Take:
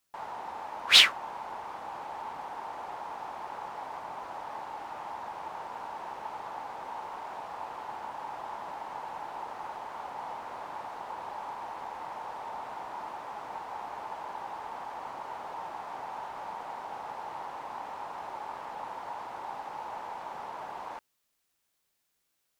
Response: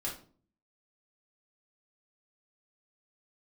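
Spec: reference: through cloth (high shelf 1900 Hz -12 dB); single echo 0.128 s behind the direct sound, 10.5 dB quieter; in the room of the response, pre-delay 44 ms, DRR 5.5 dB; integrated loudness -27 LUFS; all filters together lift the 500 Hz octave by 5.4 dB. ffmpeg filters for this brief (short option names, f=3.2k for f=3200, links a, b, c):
-filter_complex "[0:a]equalizer=f=500:t=o:g=8.5,aecho=1:1:128:0.299,asplit=2[a][b];[1:a]atrim=start_sample=2205,adelay=44[c];[b][c]afir=irnorm=-1:irlink=0,volume=-7.5dB[d];[a][d]amix=inputs=2:normalize=0,highshelf=f=1.9k:g=-12,volume=9.5dB"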